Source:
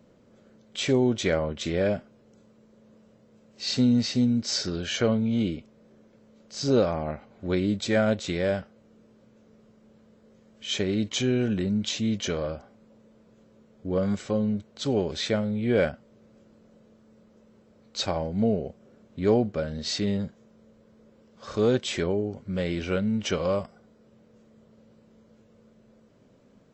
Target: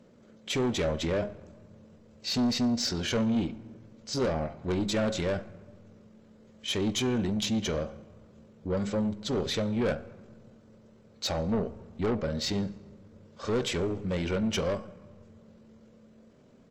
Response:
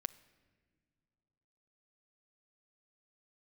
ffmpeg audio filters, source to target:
-filter_complex "[0:a]bandreject=frequency=68.67:width_type=h:width=4,bandreject=frequency=137.34:width_type=h:width=4,bandreject=frequency=206.01:width_type=h:width=4,bandreject=frequency=274.68:width_type=h:width=4,bandreject=frequency=343.35:width_type=h:width=4,bandreject=frequency=412.02:width_type=h:width=4,bandreject=frequency=480.69:width_type=h:width=4,bandreject=frequency=549.36:width_type=h:width=4,bandreject=frequency=618.03:width_type=h:width=4,bandreject=frequency=686.7:width_type=h:width=4,bandreject=frequency=755.37:width_type=h:width=4,bandreject=frequency=824.04:width_type=h:width=4,bandreject=frequency=892.71:width_type=h:width=4,bandreject=frequency=961.38:width_type=h:width=4,bandreject=frequency=1030.05:width_type=h:width=4,bandreject=frequency=1098.72:width_type=h:width=4,bandreject=frequency=1167.39:width_type=h:width=4,bandreject=frequency=1236.06:width_type=h:width=4,bandreject=frequency=1304.73:width_type=h:width=4,bandreject=frequency=1373.4:width_type=h:width=4,bandreject=frequency=1442.07:width_type=h:width=4,bandreject=frequency=1510.74:width_type=h:width=4,bandreject=frequency=1579.41:width_type=h:width=4,bandreject=frequency=1648.08:width_type=h:width=4,asoftclip=type=tanh:threshold=-25dB[link_01];[1:a]atrim=start_sample=2205,asetrate=22491,aresample=44100[link_02];[link_01][link_02]afir=irnorm=-1:irlink=0,atempo=1.6"

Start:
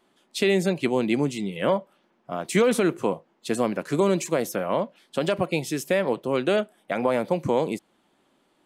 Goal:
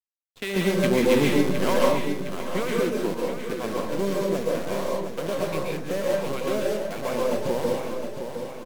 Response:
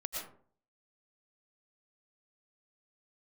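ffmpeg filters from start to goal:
-filter_complex "[0:a]acrossover=split=760[link_01][link_02];[link_01]aeval=exprs='val(0)*(1-0.7/2+0.7/2*cos(2*PI*3.2*n/s))':channel_layout=same[link_03];[link_02]aeval=exprs='val(0)*(1-0.7/2-0.7/2*cos(2*PI*3.2*n/s))':channel_layout=same[link_04];[link_03][link_04]amix=inputs=2:normalize=0,adynamicsmooth=sensitivity=4:basefreq=1200,acrusher=bits=6:dc=4:mix=0:aa=0.000001,aecho=1:1:712|1424|2136|2848|3560|4272:0.398|0.211|0.112|0.0593|0.0314|0.0166,asettb=1/sr,asplit=3[link_05][link_06][link_07];[link_05]atrim=end=0.564[link_08];[link_06]atrim=start=0.56:end=2.31,asetpts=PTS-STARTPTS,afade=type=in:duration=0.004:curve=qsin,afade=type=out:start_time=1.746:duration=0.004:curve=qsin,acontrast=53[link_09];[link_07]atrim=start=2.306[link_10];[link_08][link_09]acrossfade=duration=0.004:curve1=hsin:curve2=qsin[link_11];[link_11][link_10]acrossfade=duration=0.004:curve1=qsin:curve2=hsin[link_12];[1:a]atrim=start_sample=2205,asetrate=36603,aresample=44100[link_13];[link_12][link_13]afir=irnorm=-1:irlink=0,volume=-2.5dB"

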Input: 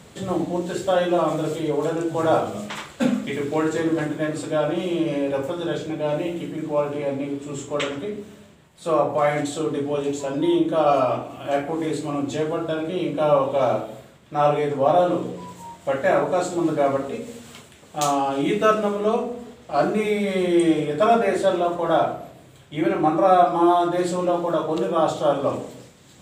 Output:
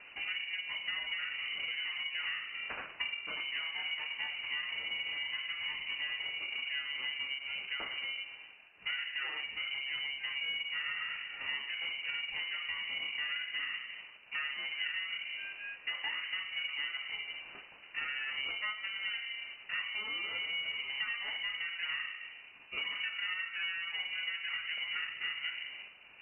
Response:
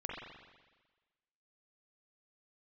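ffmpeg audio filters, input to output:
-af "bandreject=frequency=64.48:width_type=h:width=4,bandreject=frequency=128.96:width_type=h:width=4,bandreject=frequency=193.44:width_type=h:width=4,bandreject=frequency=257.92:width_type=h:width=4,bandreject=frequency=322.4:width_type=h:width=4,bandreject=frequency=386.88:width_type=h:width=4,bandreject=frequency=451.36:width_type=h:width=4,bandreject=frequency=515.84:width_type=h:width=4,bandreject=frequency=580.32:width_type=h:width=4,acompressor=threshold=-30dB:ratio=10,acrusher=bits=4:mode=log:mix=0:aa=0.000001,aeval=exprs='val(0)*sin(2*PI*430*n/s)':channel_layout=same,lowpass=frequency=2600:width_type=q:width=0.5098,lowpass=frequency=2600:width_type=q:width=0.6013,lowpass=frequency=2600:width_type=q:width=0.9,lowpass=frequency=2600:width_type=q:width=2.563,afreqshift=-3000,volume=-2dB"

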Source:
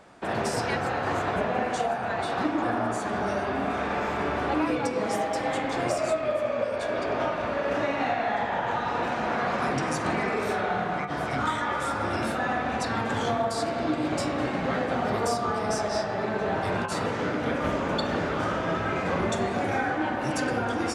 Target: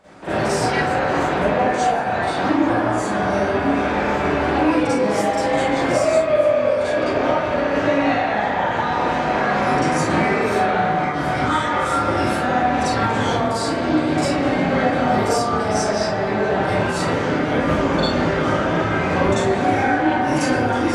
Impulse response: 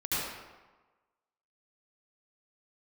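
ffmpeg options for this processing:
-filter_complex "[1:a]atrim=start_sample=2205,afade=type=out:start_time=0.26:duration=0.01,atrim=end_sample=11907,asetrate=79380,aresample=44100[link_01];[0:a][link_01]afir=irnorm=-1:irlink=0,volume=5.5dB"

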